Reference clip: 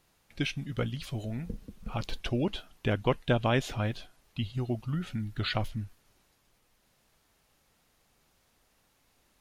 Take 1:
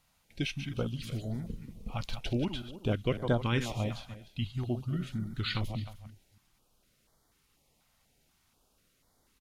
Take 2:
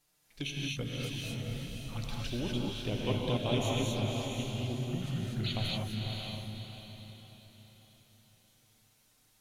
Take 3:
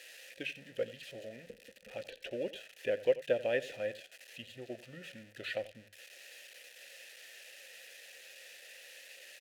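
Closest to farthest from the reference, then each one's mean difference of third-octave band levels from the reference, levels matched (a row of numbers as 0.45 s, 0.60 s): 1, 3, 2; 4.0 dB, 8.0 dB, 11.0 dB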